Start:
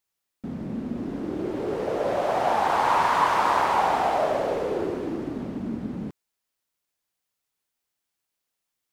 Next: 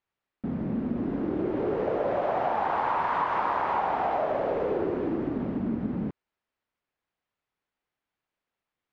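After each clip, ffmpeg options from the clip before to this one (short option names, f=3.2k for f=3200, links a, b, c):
-af "acompressor=threshold=-26dB:ratio=6,lowpass=2.3k,volume=2.5dB"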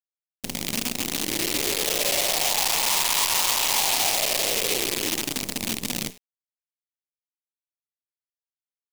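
-af "flanger=delay=8.9:depth=8.7:regen=73:speed=0.71:shape=sinusoidal,acrusher=bits=6:dc=4:mix=0:aa=0.000001,aexciter=amount=5.4:drive=5.7:freq=2.1k"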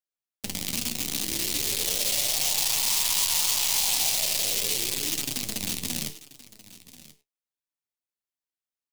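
-filter_complex "[0:a]acrossover=split=190|3000[a][b][c];[b]acompressor=threshold=-37dB:ratio=6[d];[a][d][c]amix=inputs=3:normalize=0,flanger=delay=6.4:depth=9.2:regen=44:speed=0.39:shape=triangular,aecho=1:1:1034:0.119,volume=3.5dB"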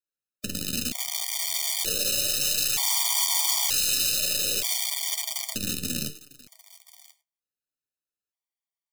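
-filter_complex "[0:a]asplit=2[a][b];[b]aeval=exprs='val(0)*gte(abs(val(0)),0.015)':c=same,volume=-7dB[c];[a][c]amix=inputs=2:normalize=0,afftfilt=real='re*gt(sin(2*PI*0.54*pts/sr)*(1-2*mod(floor(b*sr/1024/610),2)),0)':imag='im*gt(sin(2*PI*0.54*pts/sr)*(1-2*mod(floor(b*sr/1024/610),2)),0)':win_size=1024:overlap=0.75"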